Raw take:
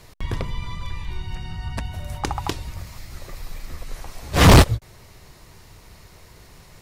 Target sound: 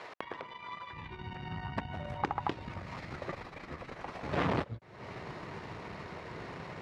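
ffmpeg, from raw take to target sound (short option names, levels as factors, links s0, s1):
-af "acompressor=threshold=0.0141:ratio=8,aeval=exprs='0.0794*(cos(1*acos(clip(val(0)/0.0794,-1,1)))-cos(1*PI/2))+0.00708*(cos(6*acos(clip(val(0)/0.0794,-1,1)))-cos(6*PI/2))':c=same,asetnsamples=n=441:p=0,asendcmd='0.93 highpass f 160',highpass=530,lowpass=2100,volume=2.82"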